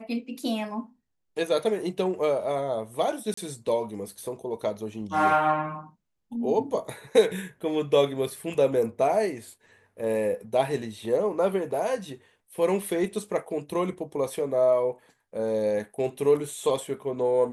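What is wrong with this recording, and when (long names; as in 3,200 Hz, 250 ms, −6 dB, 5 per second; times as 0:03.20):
0:03.34–0:03.37: drop-out 34 ms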